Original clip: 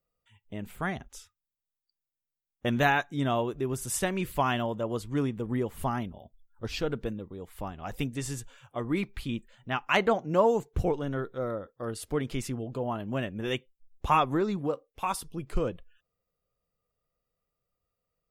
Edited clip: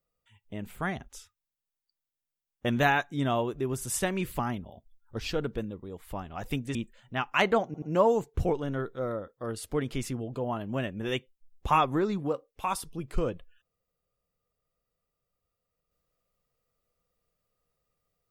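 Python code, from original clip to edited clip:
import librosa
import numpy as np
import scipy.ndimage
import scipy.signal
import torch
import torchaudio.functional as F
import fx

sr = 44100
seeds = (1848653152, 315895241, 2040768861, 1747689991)

y = fx.edit(x, sr, fx.cut(start_s=4.39, length_s=1.48),
    fx.cut(start_s=8.23, length_s=1.07),
    fx.stutter(start_s=10.21, slice_s=0.08, count=3), tone=tone)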